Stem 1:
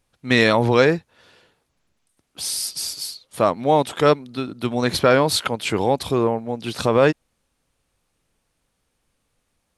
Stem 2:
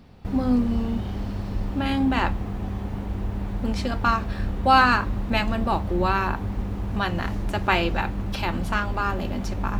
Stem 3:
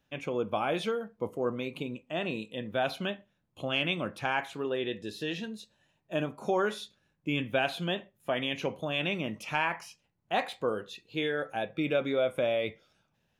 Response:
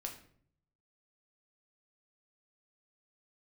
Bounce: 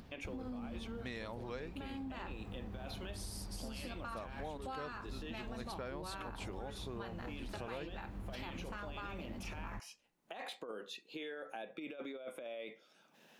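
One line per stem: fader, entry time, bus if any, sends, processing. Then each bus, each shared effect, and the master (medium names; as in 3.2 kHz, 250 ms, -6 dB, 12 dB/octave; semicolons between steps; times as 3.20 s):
-18.0 dB, 0.75 s, no bus, no send, none
-14.0 dB, 0.00 s, bus A, send -9 dB, none
-5.0 dB, 0.00 s, bus A, no send, high-pass 220 Hz 24 dB/octave; compressor with a negative ratio -32 dBFS, ratio -0.5; peak limiter -28 dBFS, peak gain reduction 10 dB
bus A: 0.0 dB, upward compressor, threshold -48 dBFS; peak limiter -29 dBFS, peak gain reduction 10.5 dB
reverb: on, RT60 0.60 s, pre-delay 6 ms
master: compression, threshold -41 dBFS, peak gain reduction 13.5 dB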